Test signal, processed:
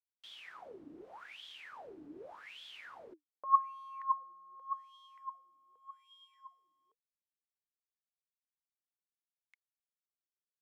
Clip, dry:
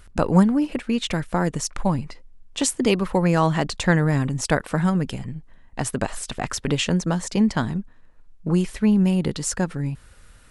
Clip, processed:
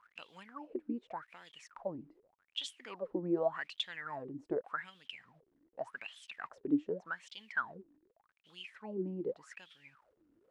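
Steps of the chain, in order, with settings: requantised 8-bit, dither none; wah 0.85 Hz 290–3400 Hz, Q 15; gain +1.5 dB

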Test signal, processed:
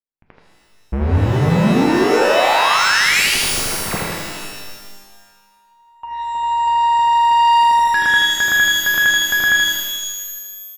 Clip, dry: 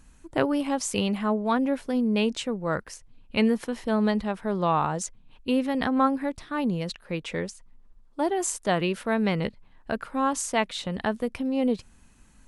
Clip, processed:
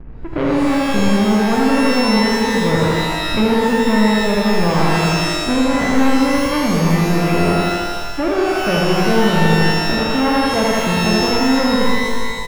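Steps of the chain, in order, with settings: half-waves squared off; steep low-pass 2600 Hz; tilt -3 dB/oct; on a send: feedback echo 80 ms, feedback 51%, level -3.5 dB; on the sum: gate with hold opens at -34 dBFS; in parallel at +0.5 dB: negative-ratio compressor -23 dBFS, ratio -1; on the sum: low shelf 83 Hz -11 dB; sine folder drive 5 dB, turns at -1.5 dBFS; shimmer reverb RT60 1.4 s, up +12 st, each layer -2 dB, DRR 2 dB; gain -12 dB

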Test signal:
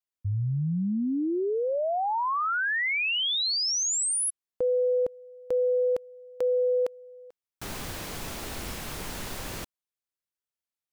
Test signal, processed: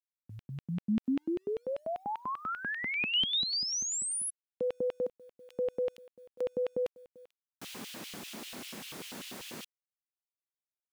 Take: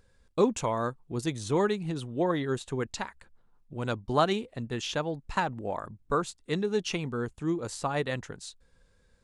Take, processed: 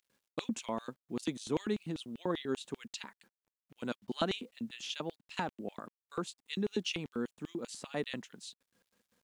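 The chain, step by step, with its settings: LFO high-pass square 5.1 Hz 220–2900 Hz; bit-crush 11-bit; gain -7.5 dB

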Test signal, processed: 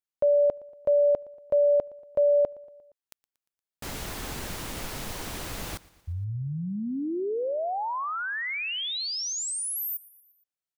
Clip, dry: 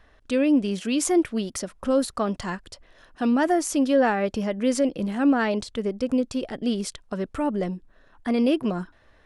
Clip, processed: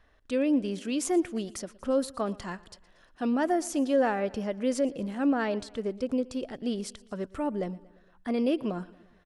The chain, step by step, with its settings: dynamic EQ 510 Hz, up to +3 dB, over -30 dBFS, Q 0.85; feedback echo 0.117 s, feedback 59%, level -22 dB; gain -7 dB

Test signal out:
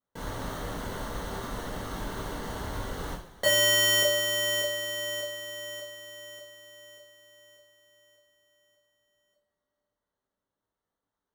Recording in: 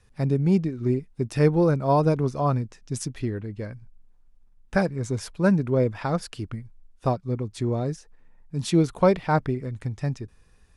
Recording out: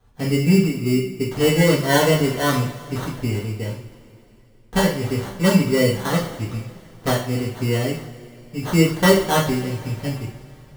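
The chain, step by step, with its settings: sample-rate reducer 2500 Hz, jitter 0%; two-slope reverb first 0.44 s, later 3.2 s, from -21 dB, DRR -7 dB; gain -3 dB

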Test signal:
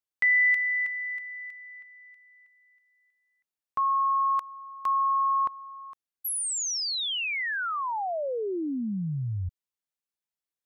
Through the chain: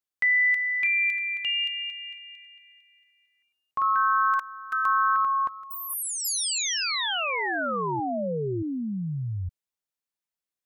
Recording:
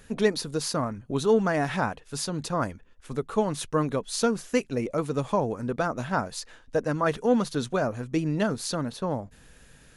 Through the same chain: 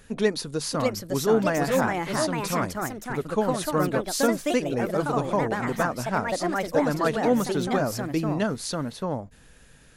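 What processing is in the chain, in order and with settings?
echoes that change speed 0.645 s, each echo +3 st, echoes 2

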